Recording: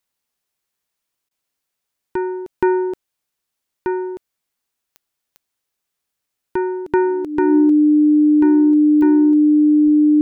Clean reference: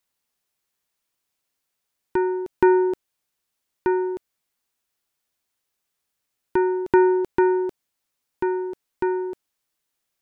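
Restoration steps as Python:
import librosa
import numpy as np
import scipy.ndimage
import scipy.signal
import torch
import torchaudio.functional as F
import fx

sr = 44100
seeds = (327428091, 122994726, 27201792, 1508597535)

y = fx.fix_declick_ar(x, sr, threshold=10.0)
y = fx.notch(y, sr, hz=300.0, q=30.0)
y = fx.highpass(y, sr, hz=140.0, slope=24, at=(9.84, 9.96), fade=0.02)
y = fx.fix_interpolate(y, sr, at_s=(1.29,), length_ms=18.0)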